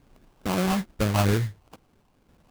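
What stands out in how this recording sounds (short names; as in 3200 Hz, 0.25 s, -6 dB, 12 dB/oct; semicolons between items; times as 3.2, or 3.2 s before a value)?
random-step tremolo; phasing stages 12, 2.3 Hz, lowest notch 420–1700 Hz; aliases and images of a low sample rate 1900 Hz, jitter 20%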